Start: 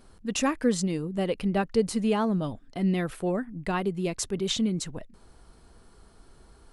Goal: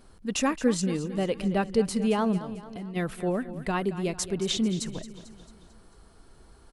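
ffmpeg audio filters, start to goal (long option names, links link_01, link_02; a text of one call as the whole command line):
ffmpeg -i in.wav -filter_complex "[0:a]asplit=3[link_01][link_02][link_03];[link_01]afade=type=out:start_time=2.37:duration=0.02[link_04];[link_02]acompressor=threshold=-41dB:ratio=3,afade=type=in:start_time=2.37:duration=0.02,afade=type=out:start_time=2.95:duration=0.02[link_05];[link_03]afade=type=in:start_time=2.95:duration=0.02[link_06];[link_04][link_05][link_06]amix=inputs=3:normalize=0,aecho=1:1:222|444|666|888|1110:0.2|0.102|0.0519|0.0265|0.0135" out.wav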